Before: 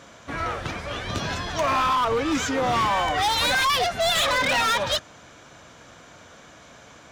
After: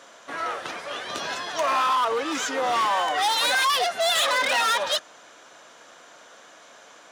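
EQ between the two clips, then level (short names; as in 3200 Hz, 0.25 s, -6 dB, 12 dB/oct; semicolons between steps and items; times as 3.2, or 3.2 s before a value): HPF 420 Hz 12 dB/oct; bell 9500 Hz +5 dB 0.24 oct; notch 2300 Hz, Q 17; 0.0 dB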